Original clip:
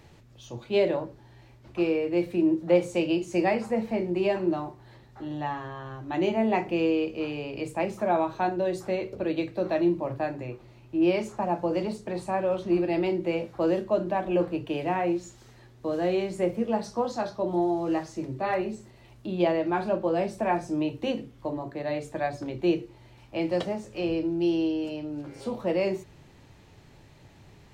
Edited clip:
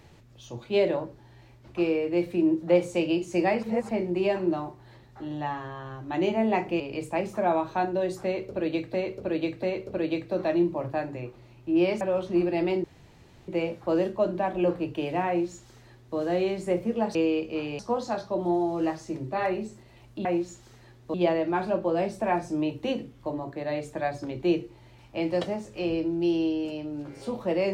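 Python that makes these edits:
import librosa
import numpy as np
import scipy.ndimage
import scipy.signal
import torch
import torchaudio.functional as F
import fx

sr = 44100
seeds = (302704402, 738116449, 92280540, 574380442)

y = fx.edit(x, sr, fx.reverse_span(start_s=3.63, length_s=0.26),
    fx.move(start_s=6.8, length_s=0.64, to_s=16.87),
    fx.repeat(start_s=8.89, length_s=0.69, count=3),
    fx.cut(start_s=11.27, length_s=1.1),
    fx.insert_room_tone(at_s=13.2, length_s=0.64),
    fx.duplicate(start_s=15.0, length_s=0.89, to_s=19.33), tone=tone)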